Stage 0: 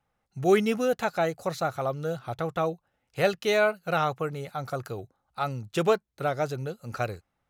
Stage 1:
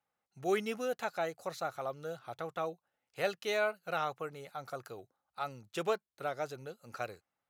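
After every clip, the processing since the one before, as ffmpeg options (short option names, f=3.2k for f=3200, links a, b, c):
-af "highpass=f=390:p=1,volume=-7.5dB"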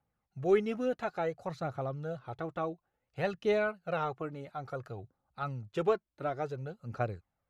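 -af "aphaser=in_gain=1:out_gain=1:delay=3.6:decay=0.42:speed=0.57:type=triangular,aemphasis=mode=reproduction:type=riaa"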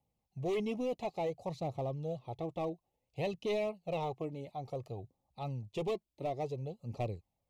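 -filter_complex "[0:a]acrossover=split=1200[a][b];[a]asoftclip=type=hard:threshold=-31dB[c];[c][b]amix=inputs=2:normalize=0,asuperstop=centerf=1500:order=4:qfactor=1.1"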